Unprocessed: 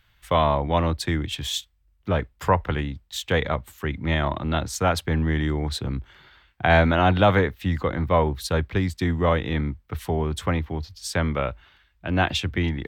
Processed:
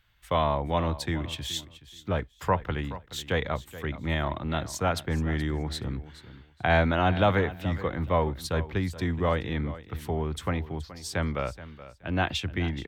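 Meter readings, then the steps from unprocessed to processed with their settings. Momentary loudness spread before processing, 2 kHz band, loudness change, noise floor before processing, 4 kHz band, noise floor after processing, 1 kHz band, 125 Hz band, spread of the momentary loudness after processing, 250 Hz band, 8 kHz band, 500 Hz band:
11 LU, -5.0 dB, -5.0 dB, -64 dBFS, -5.0 dB, -56 dBFS, -5.0 dB, -5.0 dB, 12 LU, -5.0 dB, -5.0 dB, -5.0 dB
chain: feedback echo 0.425 s, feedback 20%, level -15.5 dB; gain -5 dB

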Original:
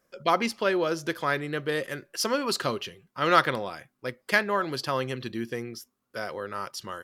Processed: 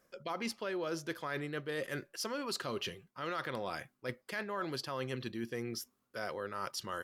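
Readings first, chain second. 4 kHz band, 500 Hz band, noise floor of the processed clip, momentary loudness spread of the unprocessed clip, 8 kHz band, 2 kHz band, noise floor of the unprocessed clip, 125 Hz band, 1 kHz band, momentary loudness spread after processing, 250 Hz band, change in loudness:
-9.0 dB, -10.5 dB, -79 dBFS, 15 LU, -8.0 dB, -12.0 dB, -77 dBFS, -8.0 dB, -13.0 dB, 5 LU, -9.0 dB, -11.0 dB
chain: limiter -17 dBFS, peak gain reduction 10.5 dB; reverse; compressor 5:1, threshold -37 dBFS, peak gain reduction 13 dB; reverse; gain +1 dB

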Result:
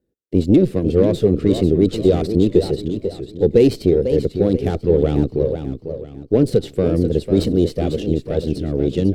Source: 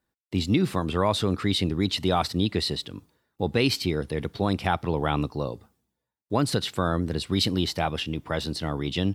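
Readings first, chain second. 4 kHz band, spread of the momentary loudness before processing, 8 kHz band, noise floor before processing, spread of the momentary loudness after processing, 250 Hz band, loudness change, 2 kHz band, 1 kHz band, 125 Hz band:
-6.5 dB, 8 LU, n/a, -84 dBFS, 8 LU, +9.5 dB, +8.5 dB, -7.0 dB, -6.5 dB, +7.5 dB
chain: added harmonics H 8 -19 dB, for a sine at -7.5 dBFS; resonant low shelf 660 Hz +13.5 dB, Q 3; warbling echo 0.494 s, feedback 36%, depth 166 cents, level -9 dB; gain -7 dB

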